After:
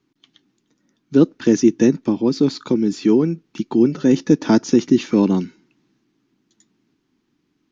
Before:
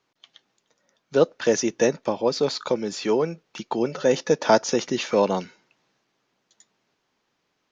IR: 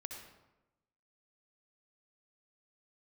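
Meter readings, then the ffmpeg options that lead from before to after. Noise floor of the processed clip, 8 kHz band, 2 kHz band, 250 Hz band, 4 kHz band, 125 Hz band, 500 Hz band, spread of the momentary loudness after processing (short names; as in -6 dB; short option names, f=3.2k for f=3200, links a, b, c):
-70 dBFS, n/a, -2.5 dB, +13.0 dB, -2.0 dB, +10.5 dB, +0.5 dB, 5 LU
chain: -af "lowshelf=f=410:t=q:w=3:g=10.5,volume=-2dB"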